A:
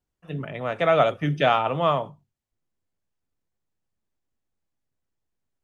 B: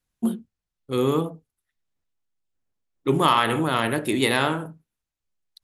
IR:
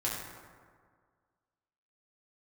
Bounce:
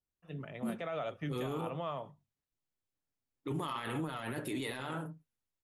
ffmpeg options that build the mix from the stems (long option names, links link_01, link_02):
-filter_complex "[0:a]alimiter=limit=-17dB:level=0:latency=1:release=128,volume=-11.5dB[link_01];[1:a]highpass=54,flanger=delay=6.5:depth=1.5:regen=40:speed=1.9:shape=sinusoidal,adelay=400,volume=-4dB[link_02];[link_01][link_02]amix=inputs=2:normalize=0,alimiter=level_in=5dB:limit=-24dB:level=0:latency=1:release=18,volume=-5dB"